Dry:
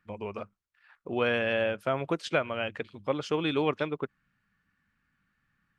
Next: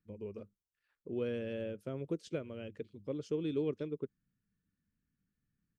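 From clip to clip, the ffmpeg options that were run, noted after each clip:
-af "firequalizer=gain_entry='entry(450,0);entry(730,-19);entry(6100,-5)':delay=0.05:min_phase=1,volume=0.531"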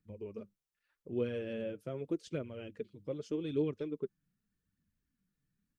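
-af "flanger=delay=0:depth=7:regen=31:speed=0.83:shape=triangular,volume=1.58"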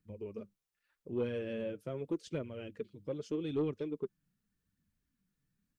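-af "asoftclip=type=tanh:threshold=0.0501,volume=1.12"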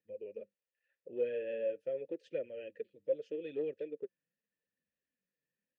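-filter_complex "[0:a]asplit=3[s0][s1][s2];[s0]bandpass=f=530:t=q:w=8,volume=1[s3];[s1]bandpass=f=1840:t=q:w=8,volume=0.501[s4];[s2]bandpass=f=2480:t=q:w=8,volume=0.355[s5];[s3][s4][s5]amix=inputs=3:normalize=0,volume=2.51"

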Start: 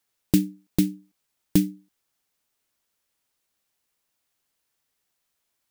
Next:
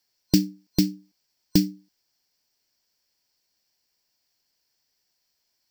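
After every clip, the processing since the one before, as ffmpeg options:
-af "superequalizer=10b=0.562:14b=3.55:16b=0.355"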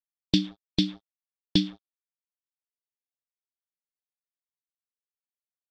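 -af "acrusher=bits=6:mix=0:aa=0.5,lowpass=f=3500:t=q:w=12,volume=0.631"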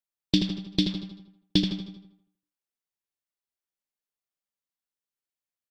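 -filter_complex "[0:a]asplit=2[s0][s1];[s1]aecho=0:1:77|154|231|308|385:0.282|0.132|0.0623|0.0293|0.0138[s2];[s0][s2]amix=inputs=2:normalize=0,aeval=exprs='0.501*(cos(1*acos(clip(val(0)/0.501,-1,1)))-cos(1*PI/2))+0.00631*(cos(8*acos(clip(val(0)/0.501,-1,1)))-cos(8*PI/2))':c=same,asplit=2[s3][s4];[s4]adelay=82,lowpass=f=2900:p=1,volume=0.501,asplit=2[s5][s6];[s6]adelay=82,lowpass=f=2900:p=1,volume=0.52,asplit=2[s7][s8];[s8]adelay=82,lowpass=f=2900:p=1,volume=0.52,asplit=2[s9][s10];[s10]adelay=82,lowpass=f=2900:p=1,volume=0.52,asplit=2[s11][s12];[s12]adelay=82,lowpass=f=2900:p=1,volume=0.52,asplit=2[s13][s14];[s14]adelay=82,lowpass=f=2900:p=1,volume=0.52[s15];[s5][s7][s9][s11][s13][s15]amix=inputs=6:normalize=0[s16];[s3][s16]amix=inputs=2:normalize=0"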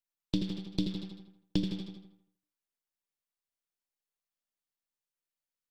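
-filter_complex "[0:a]aeval=exprs='if(lt(val(0),0),0.447*val(0),val(0))':c=same,alimiter=limit=0.282:level=0:latency=1:release=415,acrossover=split=420[s0][s1];[s1]acompressor=threshold=0.0112:ratio=6[s2];[s0][s2]amix=inputs=2:normalize=0"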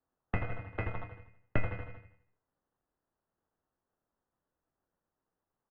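-filter_complex "[0:a]acrusher=samples=17:mix=1:aa=0.000001,asplit=2[s0][s1];[s1]adelay=23,volume=0.282[s2];[s0][s2]amix=inputs=2:normalize=0,highpass=f=250:t=q:w=0.5412,highpass=f=250:t=q:w=1.307,lowpass=f=2700:t=q:w=0.5176,lowpass=f=2700:t=q:w=0.7071,lowpass=f=2700:t=q:w=1.932,afreqshift=-300,volume=1.88"

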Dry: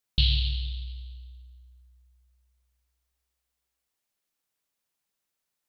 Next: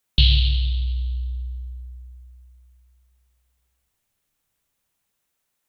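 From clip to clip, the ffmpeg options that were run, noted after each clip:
-filter_complex "[0:a]equalizer=f=4800:t=o:w=0.52:g=-4,acrossover=split=140|760[s0][s1][s2];[s0]dynaudnorm=f=240:g=9:m=4.47[s3];[s3][s1][s2]amix=inputs=3:normalize=0,volume=2.37"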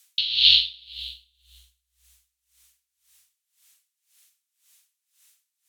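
-af "crystalizer=i=9:c=0,bandpass=f=3200:t=q:w=0.53:csg=0,aeval=exprs='val(0)*pow(10,-25*(0.5-0.5*cos(2*PI*1.9*n/s))/20)':c=same,volume=1.68"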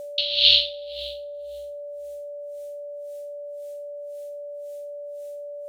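-af "aeval=exprs='val(0)+0.0224*sin(2*PI*580*n/s)':c=same"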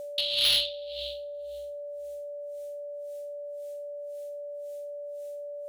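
-af "asoftclip=type=tanh:threshold=0.168,volume=0.75"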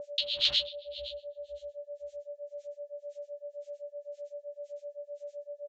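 -filter_complex "[0:a]acrossover=split=1500[s0][s1];[s0]aeval=exprs='val(0)*(1-1/2+1/2*cos(2*PI*7.8*n/s))':c=same[s2];[s1]aeval=exprs='val(0)*(1-1/2-1/2*cos(2*PI*7.8*n/s))':c=same[s3];[s2][s3]amix=inputs=2:normalize=0,aresample=16000,aresample=44100"

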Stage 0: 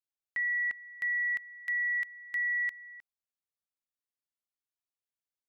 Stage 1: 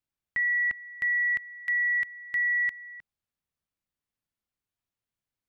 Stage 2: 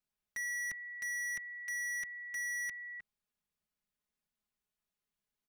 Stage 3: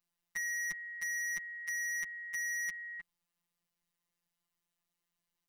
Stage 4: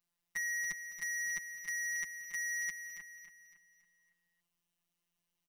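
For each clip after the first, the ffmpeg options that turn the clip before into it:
-af "bass=f=250:g=11,treble=f=4000:g=-6,volume=1.78"
-af "aecho=1:1:4.8:0.77,volume=50.1,asoftclip=hard,volume=0.02,volume=0.708"
-af "afftfilt=real='hypot(re,im)*cos(PI*b)':imag='0':win_size=1024:overlap=0.75,volume=2.24"
-af "aecho=1:1:279|558|837|1116|1395:0.355|0.153|0.0656|0.0282|0.0121"

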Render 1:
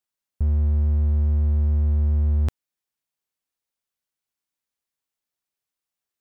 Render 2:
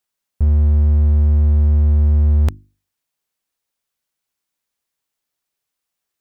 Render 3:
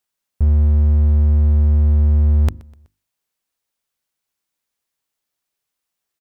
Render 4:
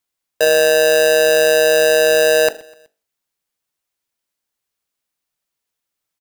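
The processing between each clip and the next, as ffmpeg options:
-af "bandreject=f=50:t=h:w=6,bandreject=f=100:t=h:w=6,bandreject=f=150:t=h:w=6,bandreject=f=200:t=h:w=6,bandreject=f=250:t=h:w=6,bandreject=f=300:t=h:w=6,bandreject=f=350:t=h:w=6,volume=2.24"
-af "aecho=1:1:125|250|375:0.0708|0.034|0.0163"
-af "aeval=exprs='val(0)*sgn(sin(2*PI*550*n/s))':c=same"

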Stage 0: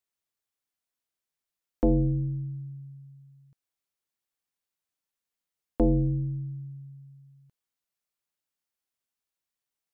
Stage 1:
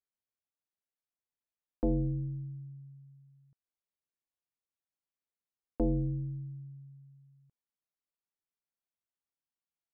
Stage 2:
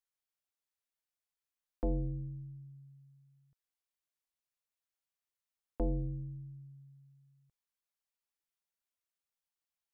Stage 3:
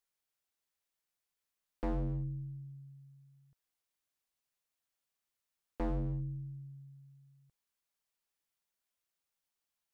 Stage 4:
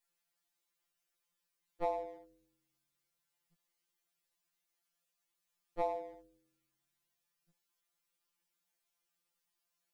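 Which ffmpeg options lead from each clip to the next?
-af "lowpass=f=1300:p=1,volume=0.473"
-af "equalizer=f=230:w=0.53:g=-9,volume=1.12"
-af "asoftclip=type=hard:threshold=0.0178,volume=1.5"
-af "afftfilt=real='re*2.83*eq(mod(b,8),0)':imag='im*2.83*eq(mod(b,8),0)':win_size=2048:overlap=0.75,volume=1.78"

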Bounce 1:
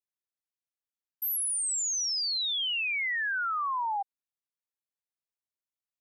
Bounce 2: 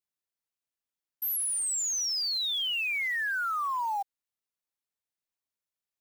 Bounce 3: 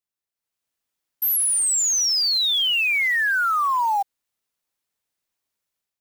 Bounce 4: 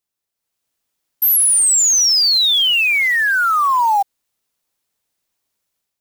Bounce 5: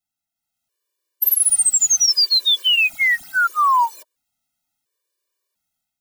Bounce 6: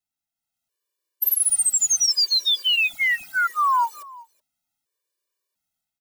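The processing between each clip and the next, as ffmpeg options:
-af "acrusher=bits=5:mode=log:mix=0:aa=0.000001"
-af "dynaudnorm=f=340:g=3:m=2.99"
-af "equalizer=f=1800:t=o:w=1.7:g=-2.5,volume=2.37"
-af "afftfilt=real='re*gt(sin(2*PI*0.72*pts/sr)*(1-2*mod(floor(b*sr/1024/310),2)),0)':imag='im*gt(sin(2*PI*0.72*pts/sr)*(1-2*mod(floor(b*sr/1024/310),2)),0)':win_size=1024:overlap=0.75"
-af "aecho=1:1:374:0.0841,volume=0.631"

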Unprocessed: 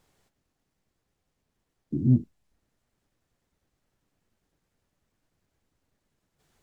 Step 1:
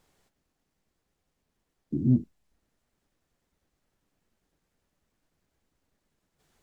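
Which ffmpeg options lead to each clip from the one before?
-af "equalizer=f=110:w=3.5:g=-6.5"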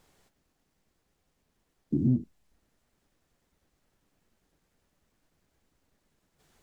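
-af "acompressor=threshold=0.0562:ratio=4,volume=1.5"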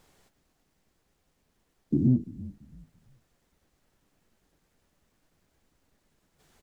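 -filter_complex "[0:a]asplit=4[s0][s1][s2][s3];[s1]adelay=338,afreqshift=-39,volume=0.126[s4];[s2]adelay=676,afreqshift=-78,volume=0.0389[s5];[s3]adelay=1014,afreqshift=-117,volume=0.0122[s6];[s0][s4][s5][s6]amix=inputs=4:normalize=0,volume=1.33"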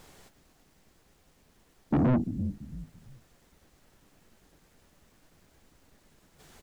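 -af "asoftclip=type=tanh:threshold=0.0316,volume=2.82"

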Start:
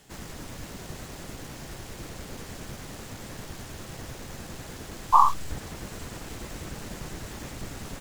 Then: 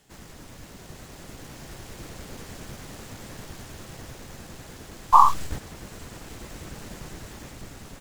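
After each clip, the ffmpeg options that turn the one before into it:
-af "agate=range=0.501:threshold=0.0251:ratio=16:detection=peak,dynaudnorm=f=380:g=7:m=1.68,volume=1.12"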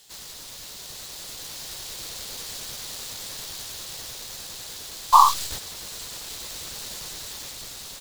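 -af "equalizer=f=250:t=o:w=1:g=-3,equalizer=f=500:t=o:w=1:g=5,equalizer=f=1000:t=o:w=1:g=5,equalizer=f=4000:t=o:w=1:g=11,crystalizer=i=6.5:c=0,volume=0.376"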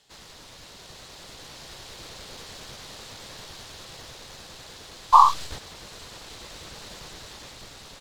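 -filter_complex "[0:a]asplit=2[s0][s1];[s1]acrusher=bits=6:mix=0:aa=0.000001,volume=0.282[s2];[s0][s2]amix=inputs=2:normalize=0,aemphasis=mode=reproduction:type=75fm,volume=0.794"

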